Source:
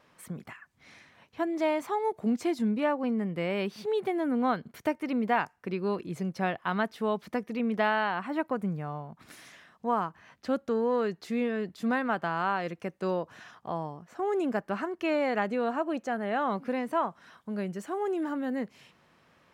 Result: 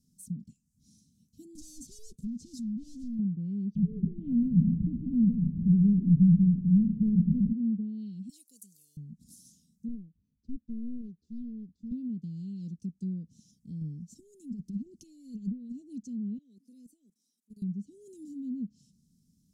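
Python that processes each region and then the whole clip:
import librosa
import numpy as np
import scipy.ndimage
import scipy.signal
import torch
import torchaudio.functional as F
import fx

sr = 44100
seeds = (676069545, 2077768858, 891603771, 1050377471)

y = fx.chain(x, sr, fx.leveller(passes=2),
    fx.overload_stage(gain_db=34.5), at=(1.55, 3.19))
y = fx.chain(y, sr, fx.delta_mod(bps=16000, step_db=-26.0),
    fx.peak_eq(hz=170.0, db=14.0, octaves=0.54),
    fx.echo_single(ms=148, db=-14.0), at=(3.75, 7.53))
y = fx.chain(y, sr, fx.highpass(hz=690.0, slope=12),
    fx.tilt_eq(slope=4.5), at=(8.29, 8.97))
y = fx.chain(y, sr, fx.lowpass(hz=1100.0, slope=12),
    fx.peak_eq(hz=180.0, db=-13.0, octaves=1.7),
    fx.doppler_dist(depth_ms=0.8), at=(9.88, 11.92))
y = fx.chain(y, sr, fx.high_shelf(hz=7600.0, db=5.0),
    fx.over_compress(threshold_db=-35.0, ratio=-1.0), at=(13.81, 15.72))
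y = fx.chain(y, sr, fx.highpass(hz=330.0, slope=24),
    fx.level_steps(step_db=21), at=(16.38, 17.62))
y = scipy.signal.sosfilt(scipy.signal.cheby2(4, 80, [770.0, 1800.0], 'bandstop', fs=sr, output='sos'), y)
y = y + 0.45 * np.pad(y, (int(4.4 * sr / 1000.0), 0))[:len(y)]
y = fx.env_lowpass_down(y, sr, base_hz=560.0, full_db=-30.0)
y = y * 10.0 ** (2.5 / 20.0)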